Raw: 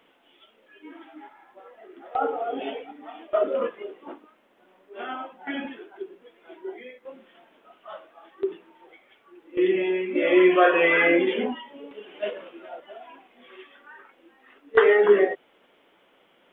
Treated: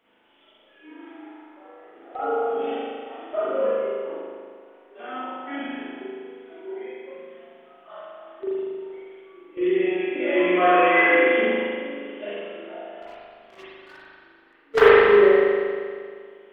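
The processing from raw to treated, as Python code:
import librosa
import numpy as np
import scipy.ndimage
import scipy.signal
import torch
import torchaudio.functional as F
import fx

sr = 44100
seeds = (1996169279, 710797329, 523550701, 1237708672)

y = fx.leveller(x, sr, passes=3, at=(13.02, 14.89))
y = fx.rev_spring(y, sr, rt60_s=2.0, pass_ms=(39,), chirp_ms=80, drr_db=-9.5)
y = y * librosa.db_to_amplitude(-8.5)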